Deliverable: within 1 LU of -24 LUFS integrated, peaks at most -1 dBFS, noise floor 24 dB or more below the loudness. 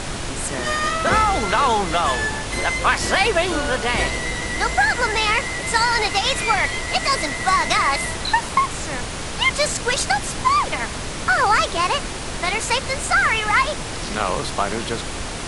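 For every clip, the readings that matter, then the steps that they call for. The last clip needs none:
dropouts 3; longest dropout 1.9 ms; noise floor -29 dBFS; noise floor target -44 dBFS; loudness -20.0 LUFS; peak -4.5 dBFS; loudness target -24.0 LUFS
-> interpolate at 7.28/8.49/13.03, 1.9 ms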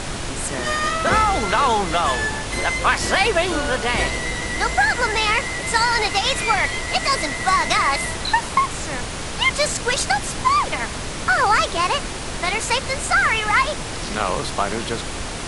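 dropouts 0; noise floor -29 dBFS; noise floor target -44 dBFS
-> noise print and reduce 15 dB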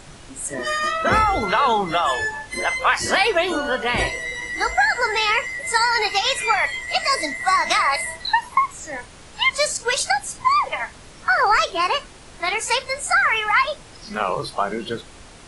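noise floor -43 dBFS; noise floor target -44 dBFS
-> noise print and reduce 6 dB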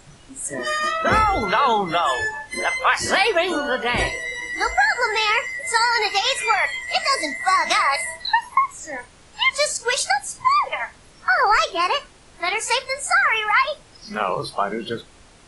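noise floor -49 dBFS; loudness -20.0 LUFS; peak -5.0 dBFS; loudness target -24.0 LUFS
-> gain -4 dB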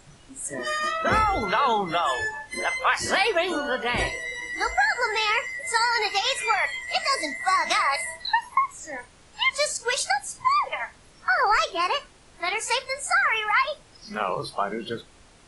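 loudness -24.0 LUFS; peak -9.0 dBFS; noise floor -53 dBFS

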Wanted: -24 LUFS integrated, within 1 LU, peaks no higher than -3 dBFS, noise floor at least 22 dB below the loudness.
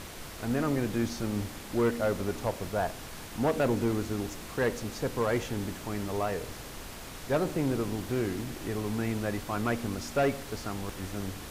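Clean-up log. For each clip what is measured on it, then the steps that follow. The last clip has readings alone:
clipped 0.5%; flat tops at -20.5 dBFS; noise floor -43 dBFS; noise floor target -54 dBFS; loudness -31.5 LUFS; peak -20.5 dBFS; loudness target -24.0 LUFS
-> clip repair -20.5 dBFS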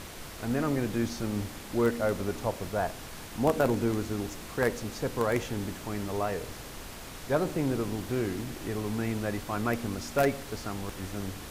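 clipped 0.0%; noise floor -43 dBFS; noise floor target -53 dBFS
-> noise print and reduce 10 dB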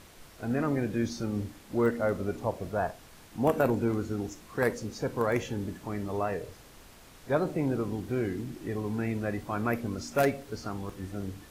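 noise floor -53 dBFS; noise floor target -54 dBFS
-> noise print and reduce 6 dB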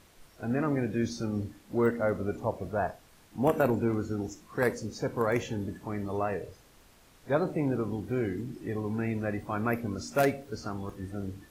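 noise floor -59 dBFS; loudness -31.5 LUFS; peak -11.5 dBFS; loudness target -24.0 LUFS
-> gain +7.5 dB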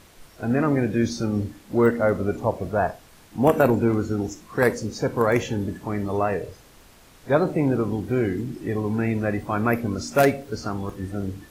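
loudness -24.0 LUFS; peak -4.0 dBFS; noise floor -51 dBFS

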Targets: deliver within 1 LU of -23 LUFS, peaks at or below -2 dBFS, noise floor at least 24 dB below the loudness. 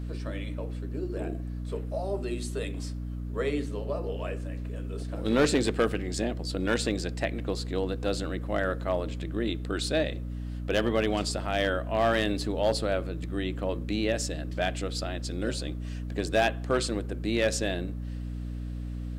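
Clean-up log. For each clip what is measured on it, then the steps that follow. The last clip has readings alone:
clipped 0.3%; flat tops at -17.0 dBFS; hum 60 Hz; harmonics up to 300 Hz; hum level -32 dBFS; loudness -30.5 LUFS; peak -17.0 dBFS; loudness target -23.0 LUFS
-> clip repair -17 dBFS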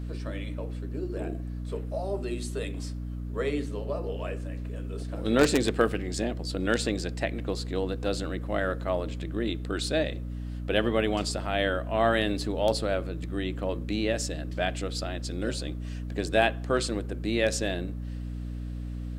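clipped 0.0%; hum 60 Hz; harmonics up to 300 Hz; hum level -32 dBFS
-> notches 60/120/180/240/300 Hz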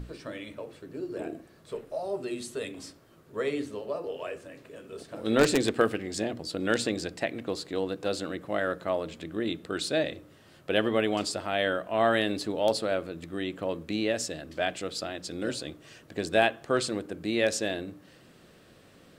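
hum none; loudness -30.0 LUFS; peak -8.0 dBFS; loudness target -23.0 LUFS
-> gain +7 dB; limiter -2 dBFS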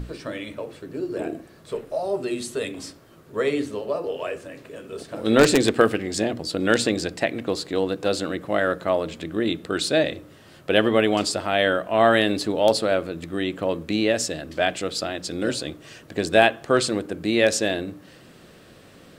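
loudness -23.0 LUFS; peak -2.0 dBFS; noise floor -49 dBFS

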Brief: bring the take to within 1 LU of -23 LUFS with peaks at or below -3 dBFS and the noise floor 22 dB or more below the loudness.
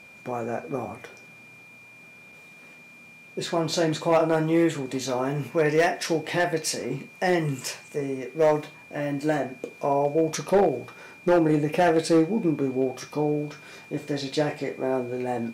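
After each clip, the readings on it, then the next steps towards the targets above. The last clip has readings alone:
clipped 0.5%; flat tops at -13.5 dBFS; steady tone 2400 Hz; tone level -47 dBFS; loudness -25.5 LUFS; peak -13.5 dBFS; loudness target -23.0 LUFS
-> clip repair -13.5 dBFS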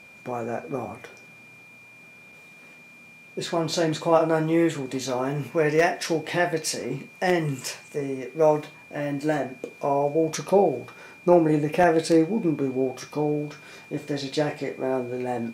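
clipped 0.0%; steady tone 2400 Hz; tone level -47 dBFS
-> notch 2400 Hz, Q 30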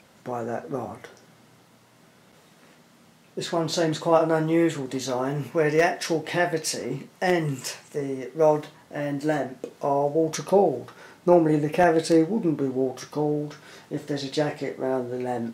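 steady tone none; loudness -25.0 LUFS; peak -5.5 dBFS; loudness target -23.0 LUFS
-> gain +2 dB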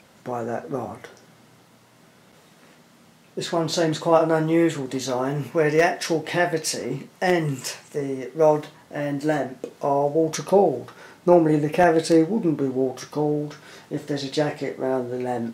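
loudness -23.0 LUFS; peak -3.5 dBFS; noise floor -54 dBFS

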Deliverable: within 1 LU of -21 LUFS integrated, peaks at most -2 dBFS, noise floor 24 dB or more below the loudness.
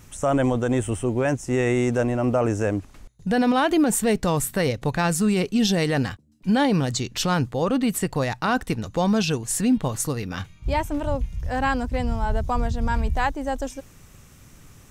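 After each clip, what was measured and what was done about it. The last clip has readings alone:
clipped 0.1%; flat tops at -13.0 dBFS; loudness -23.5 LUFS; peak -13.0 dBFS; loudness target -21.0 LUFS
-> clip repair -13 dBFS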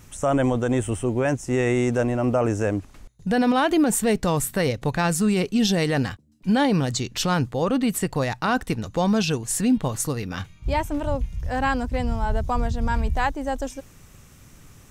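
clipped 0.0%; loudness -23.5 LUFS; peak -12.0 dBFS; loudness target -21.0 LUFS
-> gain +2.5 dB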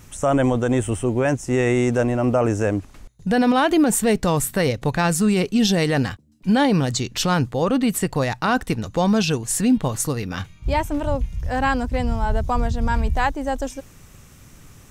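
loudness -21.0 LUFS; peak -9.5 dBFS; noise floor -47 dBFS

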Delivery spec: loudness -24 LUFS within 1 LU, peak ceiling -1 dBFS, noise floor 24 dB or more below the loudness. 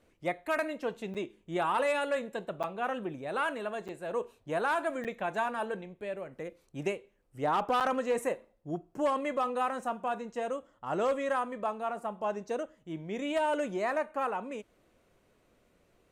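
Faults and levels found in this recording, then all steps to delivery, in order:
dropouts 5; longest dropout 7.5 ms; loudness -33.5 LUFS; peak -20.5 dBFS; loudness target -24.0 LUFS
-> interpolate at 1.14/2.63/3.88/5.04/7.8, 7.5 ms; gain +9.5 dB

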